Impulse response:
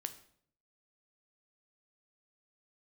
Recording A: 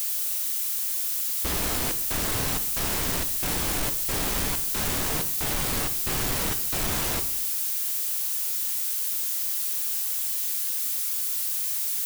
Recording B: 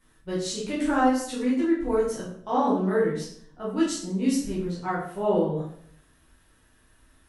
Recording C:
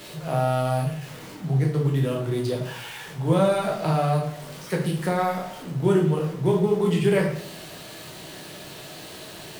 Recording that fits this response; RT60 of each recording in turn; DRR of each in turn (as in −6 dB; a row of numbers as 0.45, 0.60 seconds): A; 0.60, 0.60, 0.60 seconds; 8.5, −9.0, −1.0 decibels